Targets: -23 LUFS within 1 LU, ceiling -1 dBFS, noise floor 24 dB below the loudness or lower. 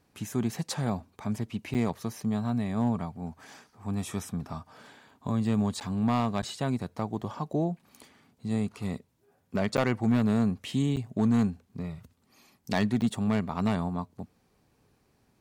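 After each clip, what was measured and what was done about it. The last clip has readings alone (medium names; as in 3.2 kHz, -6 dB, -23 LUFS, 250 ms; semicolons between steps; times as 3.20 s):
clipped samples 0.3%; clipping level -17.0 dBFS; dropouts 6; longest dropout 8.9 ms; loudness -30.0 LUFS; peak level -17.0 dBFS; loudness target -23.0 LUFS
-> clip repair -17 dBFS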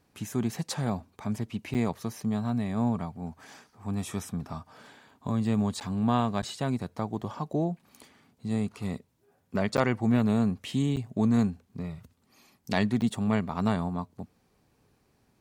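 clipped samples 0.0%; dropouts 6; longest dropout 8.9 ms
-> interpolate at 1.74/5.80/6.42/9.77/10.96/13.01 s, 8.9 ms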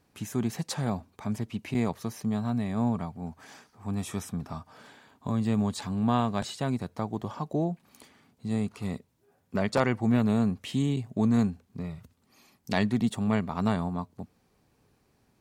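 dropouts 0; loudness -29.5 LUFS; peak level -10.0 dBFS; loudness target -23.0 LUFS
-> trim +6.5 dB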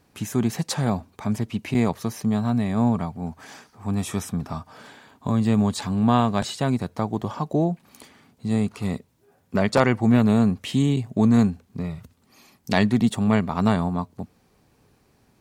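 loudness -23.0 LUFS; peak level -3.5 dBFS; noise floor -62 dBFS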